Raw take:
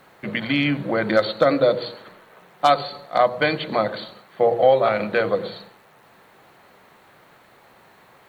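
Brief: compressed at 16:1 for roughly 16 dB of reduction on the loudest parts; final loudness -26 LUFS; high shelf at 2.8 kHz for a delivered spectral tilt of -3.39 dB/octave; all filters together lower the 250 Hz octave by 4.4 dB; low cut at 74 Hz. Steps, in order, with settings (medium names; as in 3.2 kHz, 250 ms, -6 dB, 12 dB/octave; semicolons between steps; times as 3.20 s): high-pass 74 Hz; peaking EQ 250 Hz -5.5 dB; treble shelf 2.8 kHz -5.5 dB; compression 16:1, threshold -28 dBFS; trim +8 dB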